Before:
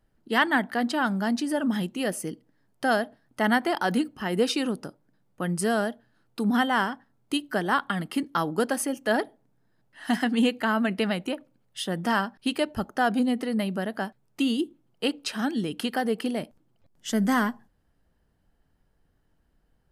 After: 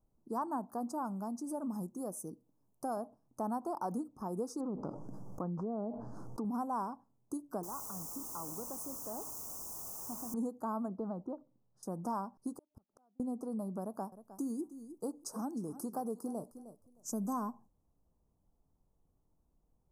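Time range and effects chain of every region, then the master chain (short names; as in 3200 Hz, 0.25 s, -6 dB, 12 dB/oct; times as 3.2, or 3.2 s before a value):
0.64–2.97 high shelf 9900 Hz +8 dB + tremolo triangle 1.1 Hz, depth 40%
4.6–6.45 median filter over 5 samples + treble ducked by the level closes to 550 Hz, closed at -22.5 dBFS + fast leveller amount 70%
7.63–10.34 compressor 2:1, threshold -42 dBFS + requantised 6-bit, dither triangular
10.88–11.83 air absorption 380 m + short-mantissa float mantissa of 8-bit
12.56–13.2 flipped gate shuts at -26 dBFS, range -41 dB + mismatched tape noise reduction decoder only
13.81–17.33 high shelf 8000 Hz +7.5 dB + feedback echo 0.309 s, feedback 18%, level -16.5 dB
whole clip: elliptic band-stop 1100–6000 Hz, stop band 50 dB; compressor 2:1, threshold -33 dBFS; dynamic EQ 1000 Hz, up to +4 dB, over -48 dBFS, Q 1.5; gain -6.5 dB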